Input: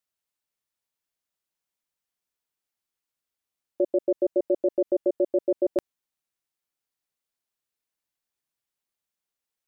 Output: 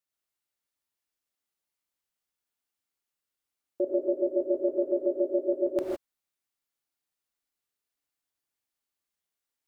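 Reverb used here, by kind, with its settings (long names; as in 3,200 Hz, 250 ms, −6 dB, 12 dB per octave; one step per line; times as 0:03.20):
reverb whose tail is shaped and stops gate 180 ms rising, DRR −1.5 dB
level −4.5 dB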